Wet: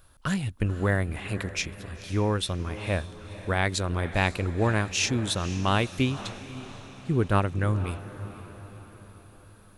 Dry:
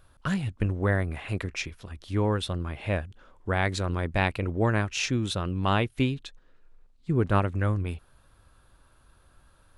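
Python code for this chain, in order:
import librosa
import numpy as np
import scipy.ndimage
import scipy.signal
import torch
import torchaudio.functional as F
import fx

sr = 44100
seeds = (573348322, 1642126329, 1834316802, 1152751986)

y = fx.high_shelf(x, sr, hz=5000.0, db=9.0)
y = fx.echo_diffused(y, sr, ms=510, feedback_pct=52, wet_db=-14.0)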